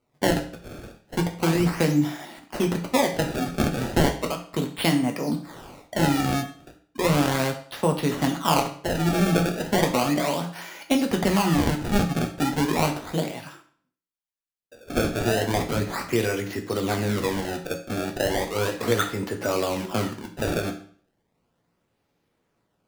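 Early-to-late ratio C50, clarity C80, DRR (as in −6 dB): 10.0 dB, 13.5 dB, 3.0 dB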